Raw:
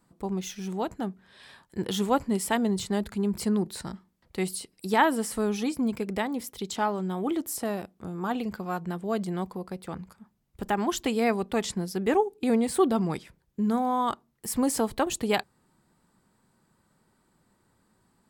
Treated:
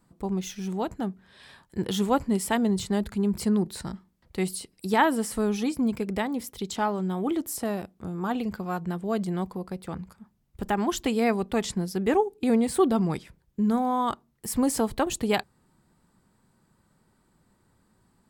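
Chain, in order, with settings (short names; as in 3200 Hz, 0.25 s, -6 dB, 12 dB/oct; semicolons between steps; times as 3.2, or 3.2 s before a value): low shelf 160 Hz +6 dB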